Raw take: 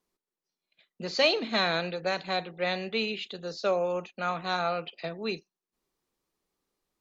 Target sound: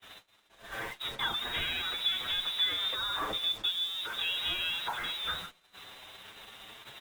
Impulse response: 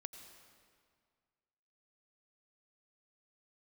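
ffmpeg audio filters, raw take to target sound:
-filter_complex "[0:a]aeval=exprs='val(0)+0.5*0.0447*sgn(val(0))':c=same,asettb=1/sr,asplit=3[s0][s1][s2];[s0]atrim=end=2.014[s3];[s1]atrim=start=2.01:end=4.53,asetpts=PTS-STARTPTS,afade=t=in:d=0.004:c=qsin,afade=t=out:st=2.516:d=0.004:c=qsin,equalizer=f=470:t=o:w=0.72:g=13.5[s4];[s2]atrim=start=4.526[s5];[s3][s4]acrossfade=d=0.004:c1=hsin:c2=qsin[s6];[s6][s5]acrossfade=d=0.004:c1=qsin:c2=hsin,acrossover=split=360[s7][s8];[s8]acompressor=threshold=0.0631:ratio=10[s9];[s7][s9]amix=inputs=2:normalize=0,crystalizer=i=5:c=0,lowpass=f=3400:t=q:w=0.5098,lowpass=f=3400:t=q:w=0.6013,lowpass=f=3400:t=q:w=0.9,lowpass=f=3400:t=q:w=2.563,afreqshift=-4000,bandreject=f=256.8:t=h:w=4,bandreject=f=513.6:t=h:w=4,bandreject=f=770.4:t=h:w=4,bandreject=f=1027.2:t=h:w=4,bandreject=f=1284:t=h:w=4,bandreject=f=1540.8:t=h:w=4,bandreject=f=1797.6:t=h:w=4,bandreject=f=2054.4:t=h:w=4,bandreject=f=2311.2:t=h:w=4,bandreject=f=2568:t=h:w=4,bandreject=f=2824.8:t=h:w=4,bandreject=f=3081.6:t=h:w=4,bandreject=f=3338.4:t=h:w=4,bandreject=f=3595.2:t=h:w=4,bandreject=f=3852:t=h:w=4,bandreject=f=4108.8:t=h:w=4,bandreject=f=4365.6:t=h:w=4,bandreject=f=4622.4:t=h:w=4,bandreject=f=4879.2:t=h:w=4,bandreject=f=5136:t=h:w=4,bandreject=f=5392.8:t=h:w=4,bandreject=f=5649.6:t=h:w=4,bandreject=f=5906.4:t=h:w=4,bandreject=f=6163.2:t=h:w=4,bandreject=f=6420:t=h:w=4,bandreject=f=6676.8:t=h:w=4,bandreject=f=6933.6:t=h:w=4,bandreject=f=7190.4:t=h:w=4,acrusher=bits=5:mix=0:aa=0.5,agate=range=0.0251:threshold=0.0251:ratio=16:detection=peak,asplit=2[s10][s11];[s11]adelay=7.4,afreqshift=0.33[s12];[s10][s12]amix=inputs=2:normalize=1,volume=0.531"

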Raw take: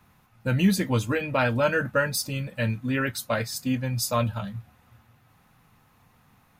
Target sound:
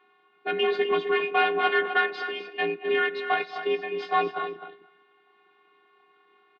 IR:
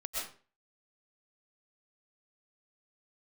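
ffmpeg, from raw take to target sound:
-filter_complex "[0:a]asplit=2[s0][s1];[1:a]atrim=start_sample=2205,atrim=end_sample=6174,adelay=94[s2];[s1][s2]afir=irnorm=-1:irlink=0,volume=0.15[s3];[s0][s3]amix=inputs=2:normalize=0,aeval=exprs='0.299*(cos(1*acos(clip(val(0)/0.299,-1,1)))-cos(1*PI/2))+0.0473*(cos(6*acos(clip(val(0)/0.299,-1,1)))-cos(6*PI/2))':c=same,afftfilt=real='hypot(re,im)*cos(PI*b)':imag='0':win_size=512:overlap=0.75,highpass=f=150:t=q:w=0.5412,highpass=f=150:t=q:w=1.307,lowpass=f=3500:t=q:w=0.5176,lowpass=f=3500:t=q:w=0.7071,lowpass=f=3500:t=q:w=1.932,afreqshift=61,asplit=2[s4][s5];[s5]adelay=256.6,volume=0.355,highshelf=f=4000:g=-5.77[s6];[s4][s6]amix=inputs=2:normalize=0,volume=1.68"

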